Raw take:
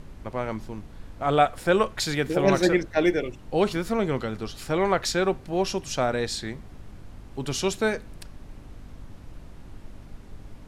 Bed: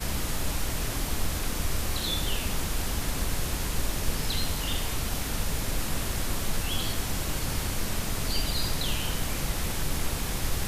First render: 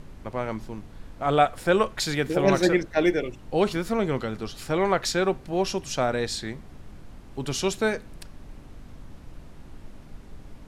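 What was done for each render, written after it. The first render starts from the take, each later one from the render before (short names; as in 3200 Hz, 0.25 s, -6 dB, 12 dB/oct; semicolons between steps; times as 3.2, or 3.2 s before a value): de-hum 50 Hz, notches 2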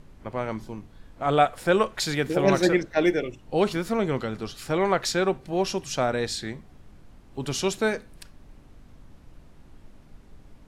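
noise print and reduce 6 dB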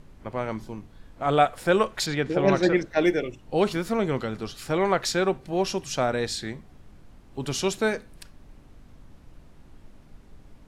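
2.06–2.77 air absorption 100 m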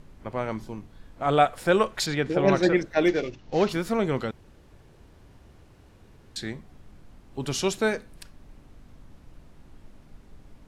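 3.08–3.69 CVSD 32 kbps; 4.31–6.36 room tone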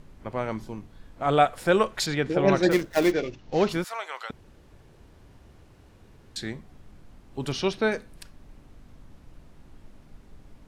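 2.71–3.12 switching dead time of 0.13 ms; 3.84–4.3 HPF 780 Hz 24 dB/oct; 7.52–7.92 polynomial smoothing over 15 samples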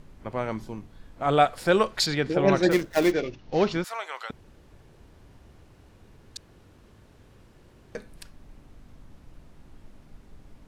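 1.39–2.34 bell 4600 Hz +6.5 dB 0.44 oct; 3.21–3.84 inverse Chebyshev low-pass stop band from 11000 Hz; 6.37–7.95 room tone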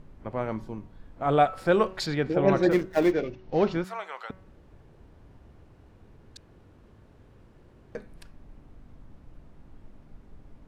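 high shelf 2600 Hz -11.5 dB; de-hum 188.1 Hz, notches 15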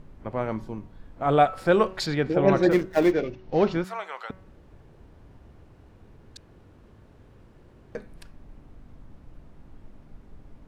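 gain +2 dB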